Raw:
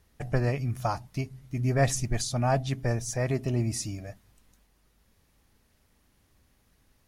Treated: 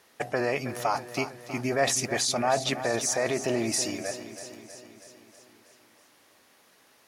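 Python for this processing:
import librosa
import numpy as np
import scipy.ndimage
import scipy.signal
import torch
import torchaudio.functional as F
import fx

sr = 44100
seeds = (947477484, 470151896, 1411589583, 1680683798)

p1 = scipy.signal.sosfilt(scipy.signal.butter(2, 420.0, 'highpass', fs=sr, output='sos'), x)
p2 = fx.high_shelf(p1, sr, hz=8700.0, db=-5.5)
p3 = fx.over_compress(p2, sr, threshold_db=-38.0, ratio=-1.0)
p4 = p2 + F.gain(torch.from_numpy(p3), 2.5).numpy()
p5 = fx.echo_feedback(p4, sr, ms=321, feedback_pct=59, wet_db=-12.0)
y = F.gain(torch.from_numpy(p5), 1.5).numpy()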